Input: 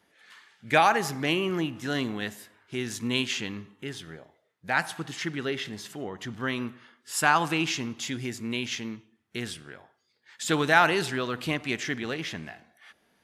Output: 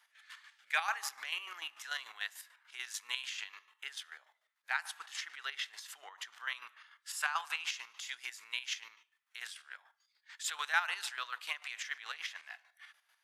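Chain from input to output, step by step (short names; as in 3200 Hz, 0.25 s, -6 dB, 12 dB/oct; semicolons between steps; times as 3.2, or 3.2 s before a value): HPF 1000 Hz 24 dB/oct; compressor 1.5:1, threshold -42 dBFS, peak gain reduction 9.5 dB; chopper 6.8 Hz, depth 60%, duty 40%; gain +1 dB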